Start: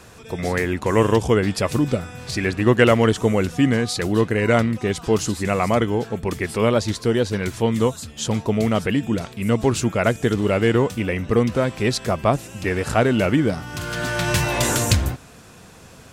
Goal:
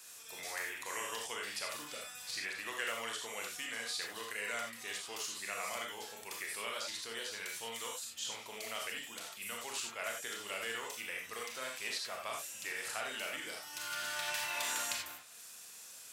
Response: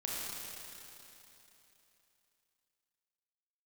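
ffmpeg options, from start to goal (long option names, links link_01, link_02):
-filter_complex "[0:a]acrossover=split=490|1600|3600[link_01][link_02][link_03][link_04];[link_01]acompressor=threshold=-31dB:ratio=4[link_05];[link_02]acompressor=threshold=-22dB:ratio=4[link_06];[link_03]acompressor=threshold=-32dB:ratio=4[link_07];[link_04]acompressor=threshold=-46dB:ratio=4[link_08];[link_05][link_06][link_07][link_08]amix=inputs=4:normalize=0,aderivative[link_09];[1:a]atrim=start_sample=2205,afade=type=out:start_time=0.15:duration=0.01,atrim=end_sample=7056[link_10];[link_09][link_10]afir=irnorm=-1:irlink=0,volume=1.5dB"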